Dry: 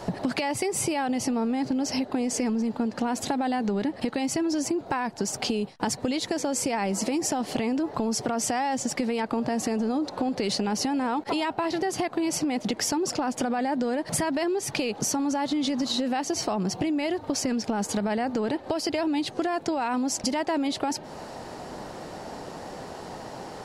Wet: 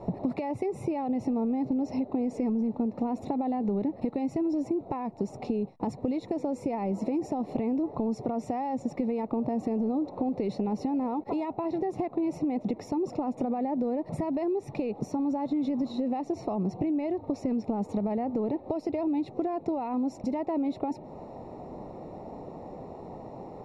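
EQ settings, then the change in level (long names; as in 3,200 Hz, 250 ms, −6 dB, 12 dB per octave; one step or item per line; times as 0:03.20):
moving average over 28 samples
−1.0 dB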